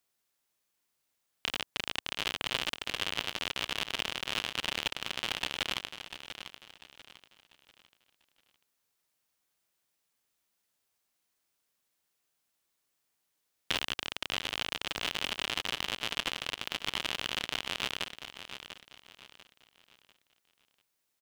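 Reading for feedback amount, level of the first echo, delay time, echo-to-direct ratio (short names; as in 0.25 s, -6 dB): 34%, -10.5 dB, 0.694 s, -10.0 dB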